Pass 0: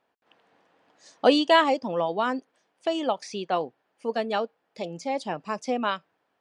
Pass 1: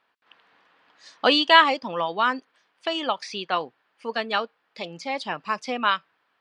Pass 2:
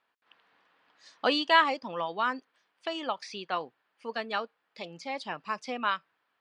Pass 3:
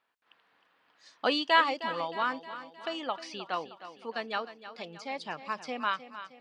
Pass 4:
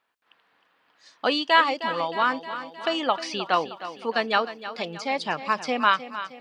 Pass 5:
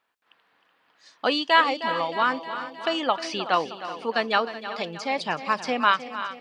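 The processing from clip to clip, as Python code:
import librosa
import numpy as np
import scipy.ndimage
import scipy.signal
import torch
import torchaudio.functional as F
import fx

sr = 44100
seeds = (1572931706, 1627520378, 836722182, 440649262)

y1 = fx.band_shelf(x, sr, hz=2200.0, db=10.5, octaves=2.6)
y1 = y1 * librosa.db_to_amplitude(-3.0)
y2 = fx.dynamic_eq(y1, sr, hz=3300.0, q=2.4, threshold_db=-37.0, ratio=4.0, max_db=-4)
y2 = y2 * librosa.db_to_amplitude(-6.5)
y3 = fx.echo_feedback(y2, sr, ms=311, feedback_pct=53, wet_db=-13.0)
y3 = y3 * librosa.db_to_amplitude(-1.5)
y4 = fx.rider(y3, sr, range_db=4, speed_s=2.0)
y4 = y4 * librosa.db_to_amplitude(7.0)
y5 = y4 + 10.0 ** (-15.0 / 20.0) * np.pad(y4, (int(375 * sr / 1000.0), 0))[:len(y4)]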